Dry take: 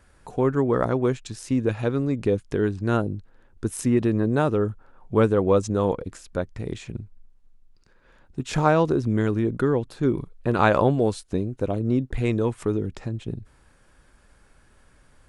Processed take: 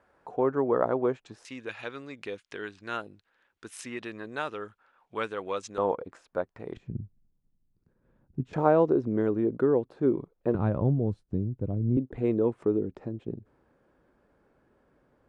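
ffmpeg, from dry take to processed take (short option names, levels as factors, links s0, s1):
-af "asetnsamples=n=441:p=0,asendcmd='1.45 bandpass f 2600;5.78 bandpass f 830;6.77 bandpass f 150;8.53 bandpass f 470;10.55 bandpass f 120;11.97 bandpass f 390',bandpass=f=690:t=q:w=0.93:csg=0"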